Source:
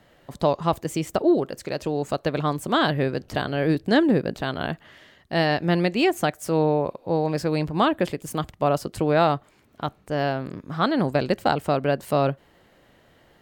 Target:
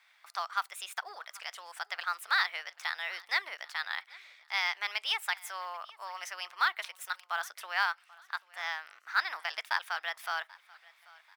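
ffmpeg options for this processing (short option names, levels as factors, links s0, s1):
-af "highpass=f=1100:w=0.5412,highpass=f=1100:w=1.3066,highshelf=f=2900:g=-7.5,asetrate=52038,aresample=44100,acrusher=bits=8:mode=log:mix=0:aa=0.000001,aecho=1:1:786|1572:0.0708|0.0262"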